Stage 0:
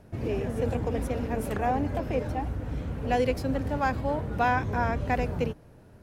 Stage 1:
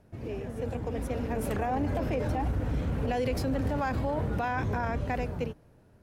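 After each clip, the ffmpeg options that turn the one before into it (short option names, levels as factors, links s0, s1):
-af "dynaudnorm=f=220:g=13:m=4.47,alimiter=limit=0.178:level=0:latency=1:release=19,volume=0.447"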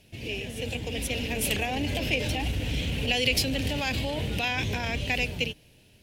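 -af "highshelf=f=1900:t=q:w=3:g=14"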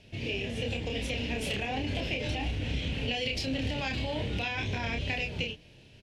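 -filter_complex "[0:a]lowpass=5200,acompressor=threshold=0.0251:ratio=6,asplit=2[s0][s1];[s1]adelay=30,volume=0.631[s2];[s0][s2]amix=inputs=2:normalize=0,volume=1.19"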